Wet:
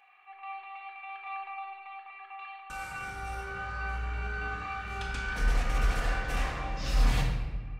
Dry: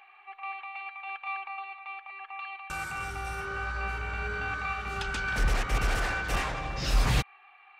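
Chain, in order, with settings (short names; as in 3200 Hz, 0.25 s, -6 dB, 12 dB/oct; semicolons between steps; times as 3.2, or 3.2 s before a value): 1.26–1.91 low shelf 430 Hz +6 dB; reverb RT60 1.3 s, pre-delay 4 ms, DRR -1.5 dB; gain -7.5 dB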